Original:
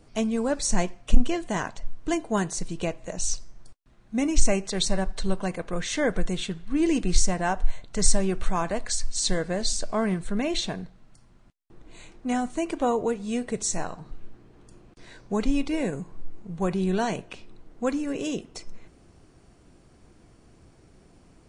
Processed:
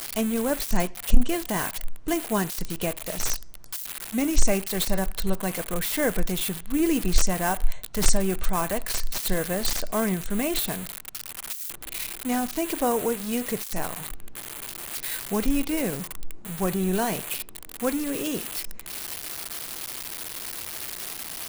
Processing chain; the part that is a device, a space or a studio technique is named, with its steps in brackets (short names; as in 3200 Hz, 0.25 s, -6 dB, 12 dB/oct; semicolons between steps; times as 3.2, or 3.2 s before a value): budget class-D amplifier (switching dead time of 0.086 ms; switching spikes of -15.5 dBFS)